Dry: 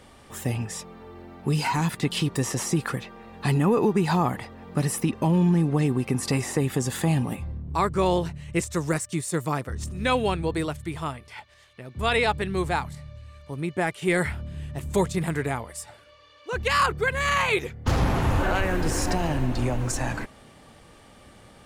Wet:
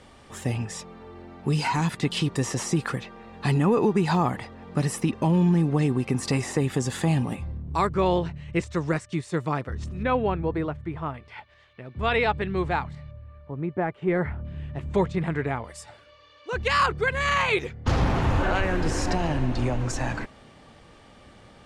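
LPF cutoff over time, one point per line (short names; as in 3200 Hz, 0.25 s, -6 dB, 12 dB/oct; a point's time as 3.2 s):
8200 Hz
from 7.87 s 3800 Hz
from 10.03 s 1700 Hz
from 11.14 s 3100 Hz
from 13.11 s 1300 Hz
from 14.45 s 2800 Hz
from 15.64 s 6300 Hz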